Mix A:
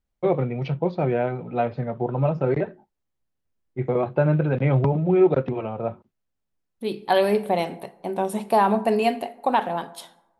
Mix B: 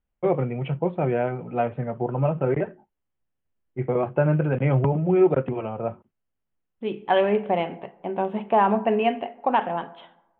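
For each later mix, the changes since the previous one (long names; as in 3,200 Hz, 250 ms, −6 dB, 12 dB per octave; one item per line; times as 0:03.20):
master: add elliptic low-pass filter 3,100 Hz, stop band 40 dB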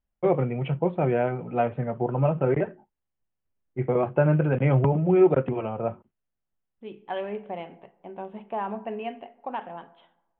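second voice −11.5 dB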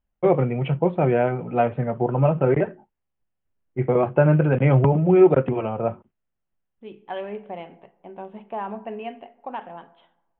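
first voice +4.0 dB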